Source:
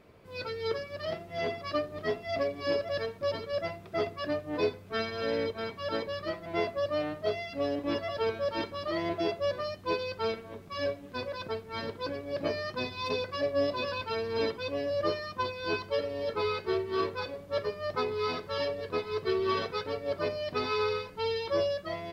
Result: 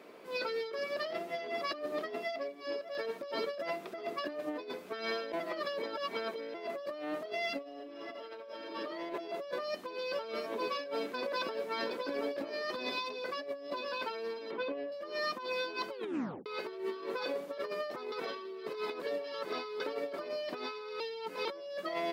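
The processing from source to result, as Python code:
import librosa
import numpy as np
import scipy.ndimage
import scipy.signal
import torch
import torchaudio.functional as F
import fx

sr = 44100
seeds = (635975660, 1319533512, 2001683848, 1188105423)

y = fx.reverb_throw(x, sr, start_s=7.59, length_s=1.09, rt60_s=1.2, drr_db=-5.5)
y = fx.echo_single(y, sr, ms=718, db=-11.5, at=(9.41, 12.99))
y = fx.air_absorb(y, sr, metres=320.0, at=(14.51, 14.92))
y = fx.edit(y, sr, fx.fade_down_up(start_s=1.87, length_s=1.57, db=-14.5, fade_s=0.49, curve='log'),
    fx.reverse_span(start_s=5.32, length_s=1.22),
    fx.tape_stop(start_s=15.91, length_s=0.55),
    fx.reverse_span(start_s=18.12, length_s=1.68),
    fx.reverse_span(start_s=21.0, length_s=0.45), tone=tone)
y = scipy.signal.sosfilt(scipy.signal.butter(4, 250.0, 'highpass', fs=sr, output='sos'), y)
y = fx.over_compress(y, sr, threshold_db=-39.0, ratio=-1.0)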